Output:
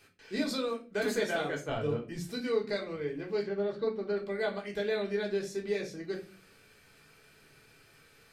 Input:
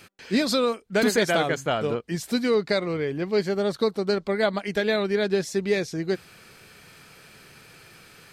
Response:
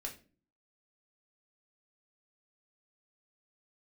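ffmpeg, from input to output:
-filter_complex "[0:a]asettb=1/sr,asplit=3[a][b][c];[a]atrim=end=1.694[d];[b]atrim=start=1.69:end=2.27,asetpts=PTS-STARTPTS,afade=t=in:d=0.004:c=qsin,afade=t=out:st=0.576:d=0.004:c=qsin,lowshelf=f=180:g=11[e];[c]atrim=start=2.266[f];[d][e]acrossfade=d=0.004:c1=hsin:c2=qsin[g];[g][f]acrossfade=d=0.004:c1=qsin:c2=hsin,asettb=1/sr,asplit=3[h][i][j];[h]atrim=end=3.424[k];[i]atrim=start=3.42:end=4.17,asetpts=PTS-STARTPTS,afade=t=in:d=0.004:c=qsin,afade=t=out:st=0.746:d=0.004:c=qsin,lowpass=3k[l];[j]atrim=start=4.166[m];[k][l]acrossfade=d=0.004:c1=hsin:c2=qsin[n];[n][m]acrossfade=d=0.004:c1=qsin:c2=hsin[o];[1:a]atrim=start_sample=2205[p];[o][p]afir=irnorm=-1:irlink=0,volume=-8.5dB"

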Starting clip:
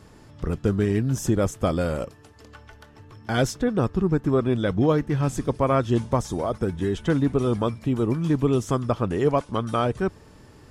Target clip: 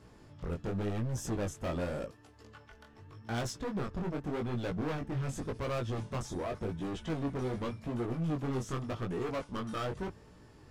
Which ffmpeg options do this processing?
-af "highshelf=f=8k:g=-5.5,asoftclip=type=hard:threshold=-25.5dB,flanger=delay=16.5:depth=6.7:speed=0.87,volume=-4dB"

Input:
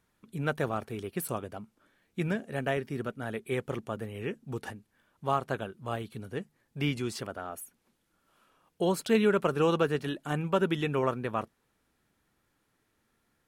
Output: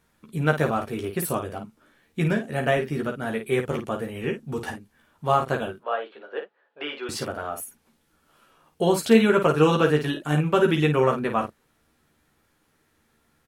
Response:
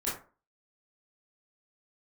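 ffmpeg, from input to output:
-filter_complex "[0:a]asettb=1/sr,asplit=3[a][b][c];[a]atrim=end=5.784[d];[b]atrim=start=5.78:end=7.09,asetpts=PTS-STARTPTS,afade=t=in:d=0.004:c=qsin,afade=t=out:st=1.306:d=0.004:c=qsin,highpass=f=440:w=0.5412,highpass=f=440:w=1.3066,equalizer=f=550:t=q:w=4:g=4,equalizer=f=1.5k:t=q:w=4:g=4,equalizer=f=2.2k:t=q:w=4:g=-7,lowpass=f=3.1k:w=0.5412,lowpass=f=3.1k:w=1.3066[e];[c]atrim=start=7.086[f];[d][e]acrossfade=d=0.004:c1=hsin:c2=qsin[g];[g][f]acrossfade=d=0.004:c1=qsin:c2=hsin,asplit=2[h][i];[i]aecho=0:1:13|53:0.668|0.422[j];[h][j]amix=inputs=2:normalize=0,volume=5.5dB"

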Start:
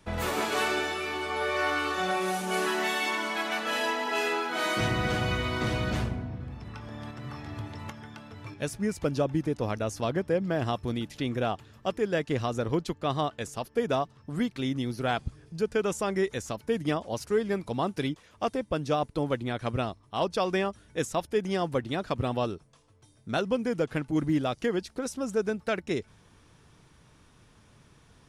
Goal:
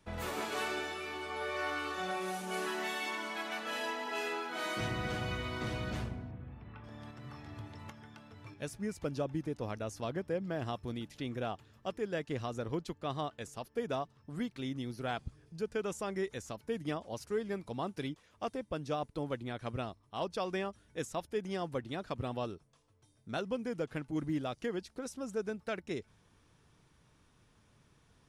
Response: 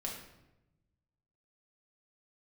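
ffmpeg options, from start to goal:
-filter_complex "[0:a]asettb=1/sr,asplit=3[a][b][c];[a]atrim=end=6.314[d];[b]atrim=start=6.31:end=6.84,asetpts=PTS-STARTPTS,afade=t=in:d=0.004:c=qsin,afade=t=out:st=0.526:d=0.004:c=qsin,lowpass=f=3.1k:w=0.5412,lowpass=f=3.1k:w=1.3066[e];[c]atrim=start=6.836[f];[d][e]acrossfade=d=0.004:c1=hsin:c2=qsin[g];[g][f]acrossfade=d=0.004:c1=qsin:c2=hsin,volume=-8.5dB"

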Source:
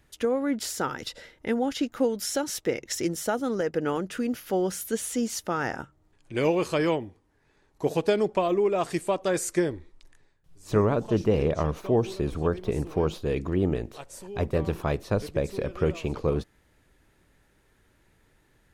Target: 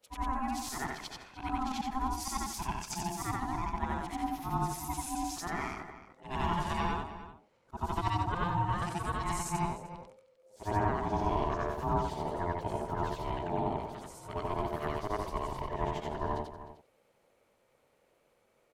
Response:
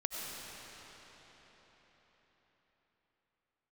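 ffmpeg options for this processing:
-filter_complex "[0:a]afftfilt=real='re':imag='-im':win_size=8192:overlap=0.75,aeval=exprs='val(0)*sin(2*PI*520*n/s)':c=same,asplit=2[a][b];[b]adelay=303.2,volume=-13dB,highshelf=f=4k:g=-6.82[c];[a][c]amix=inputs=2:normalize=0"

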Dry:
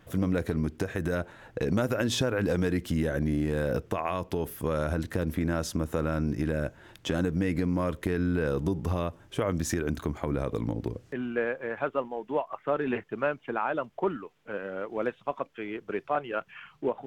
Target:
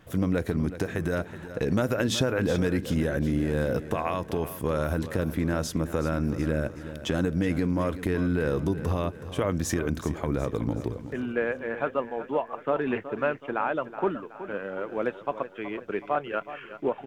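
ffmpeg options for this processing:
-af "aecho=1:1:373|746|1119|1492|1865:0.224|0.105|0.0495|0.0232|0.0109,volume=1.5dB"

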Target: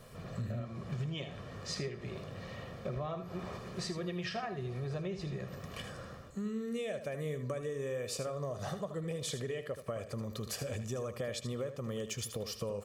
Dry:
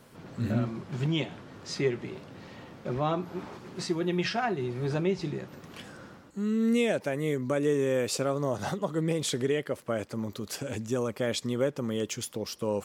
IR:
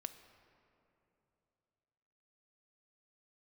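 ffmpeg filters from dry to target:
-filter_complex "[0:a]lowshelf=f=70:g=10.5,aecho=1:1:1.7:0.59,acompressor=threshold=-34dB:ratio=10,asplit=2[a][b];[1:a]atrim=start_sample=2205,adelay=78[c];[b][c]afir=irnorm=-1:irlink=0,volume=-6.5dB[d];[a][d]amix=inputs=2:normalize=0,volume=-1dB"

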